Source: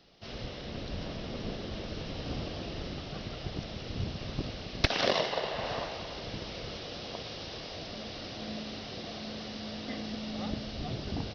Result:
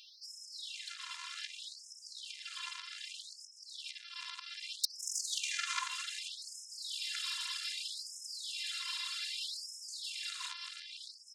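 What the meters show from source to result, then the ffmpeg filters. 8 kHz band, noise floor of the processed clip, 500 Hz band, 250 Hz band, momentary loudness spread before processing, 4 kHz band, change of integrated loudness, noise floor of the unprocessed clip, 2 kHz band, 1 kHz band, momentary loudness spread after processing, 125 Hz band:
n/a, -56 dBFS, under -40 dB, under -40 dB, 9 LU, 0.0 dB, -3.0 dB, -42 dBFS, -3.0 dB, -9.5 dB, 11 LU, under -40 dB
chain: -af "asubboost=boost=9:cutoff=76,acompressor=threshold=-30dB:ratio=8,afftfilt=real='hypot(re,im)*cos(PI*b)':imag='0':win_size=512:overlap=0.75,aeval=exprs='0.133*(cos(1*acos(clip(val(0)/0.133,-1,1)))-cos(1*PI/2))+0.0188*(cos(3*acos(clip(val(0)/0.133,-1,1)))-cos(3*PI/2))+0.00944*(cos(4*acos(clip(val(0)/0.133,-1,1)))-cos(4*PI/2))+0.00106*(cos(6*acos(clip(val(0)/0.133,-1,1)))-cos(6*PI/2))+0.0376*(cos(7*acos(clip(val(0)/0.133,-1,1)))-cos(7*PI/2))':c=same,afftfilt=real='re*gte(b*sr/1024,890*pow(5100/890,0.5+0.5*sin(2*PI*0.64*pts/sr)))':imag='im*gte(b*sr/1024,890*pow(5100/890,0.5+0.5*sin(2*PI*0.64*pts/sr)))':win_size=1024:overlap=0.75,volume=10dB"

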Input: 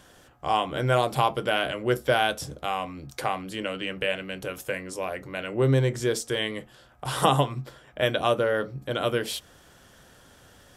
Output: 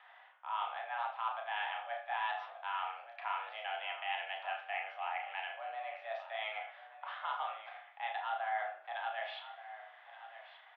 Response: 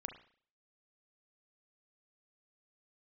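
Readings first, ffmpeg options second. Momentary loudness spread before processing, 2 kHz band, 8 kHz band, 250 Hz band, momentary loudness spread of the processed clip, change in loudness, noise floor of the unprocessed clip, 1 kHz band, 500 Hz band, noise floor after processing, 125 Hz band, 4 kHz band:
11 LU, -9.0 dB, under -40 dB, under -40 dB, 13 LU, -13.0 dB, -55 dBFS, -8.5 dB, -20.0 dB, -59 dBFS, under -40 dB, -14.5 dB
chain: -filter_complex "[0:a]areverse,acompressor=threshold=-32dB:ratio=6,areverse[a];[1:a]atrim=start_sample=2205[b];[a][b]afir=irnorm=-1:irlink=0,highpass=f=520:t=q:w=0.5412,highpass=f=520:t=q:w=1.307,lowpass=f=2.8k:t=q:w=0.5176,lowpass=f=2.8k:t=q:w=0.7071,lowpass=f=2.8k:t=q:w=1.932,afreqshift=210,asplit=2[c][d];[d]adelay=34,volume=-7dB[e];[c][e]amix=inputs=2:normalize=0,aecho=1:1:1177:0.2,volume=1dB"

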